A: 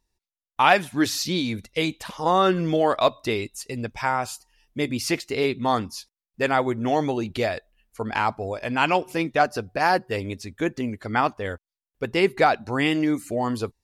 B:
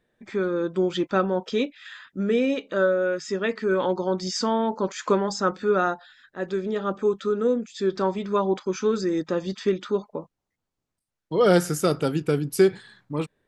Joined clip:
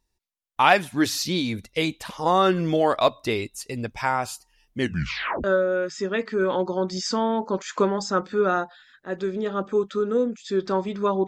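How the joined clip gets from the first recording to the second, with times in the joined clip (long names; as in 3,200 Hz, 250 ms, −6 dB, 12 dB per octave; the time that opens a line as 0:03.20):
A
0:04.74: tape stop 0.70 s
0:05.44: continue with B from 0:02.74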